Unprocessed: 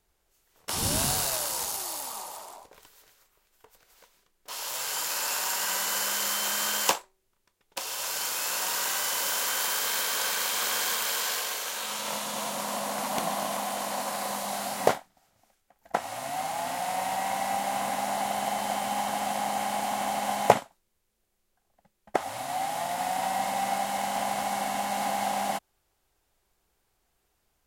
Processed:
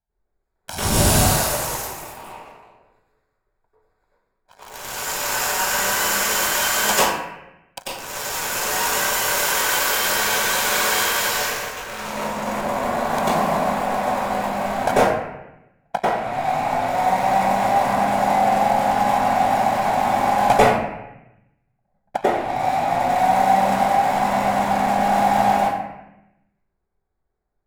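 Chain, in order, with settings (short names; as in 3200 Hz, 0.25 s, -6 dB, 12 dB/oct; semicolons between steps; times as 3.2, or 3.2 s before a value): Wiener smoothing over 15 samples; sample leveller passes 3; reverb RT60 0.90 s, pre-delay 90 ms, DRR -9.5 dB; gain -10.5 dB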